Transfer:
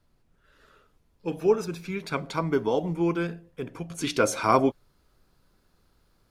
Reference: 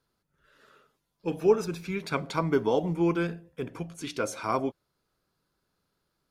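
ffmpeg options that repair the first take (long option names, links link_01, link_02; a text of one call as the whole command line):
ffmpeg -i in.wav -af "agate=range=-21dB:threshold=-58dB,asetnsamples=nb_out_samples=441:pad=0,asendcmd='3.9 volume volume -7.5dB',volume=0dB" out.wav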